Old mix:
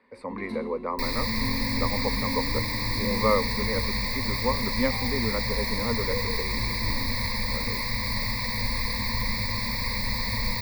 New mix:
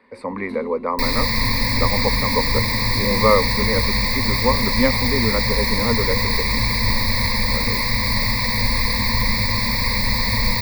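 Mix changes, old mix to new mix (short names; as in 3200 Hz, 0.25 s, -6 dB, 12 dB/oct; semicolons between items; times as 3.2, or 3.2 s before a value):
speech +7.5 dB; second sound +8.5 dB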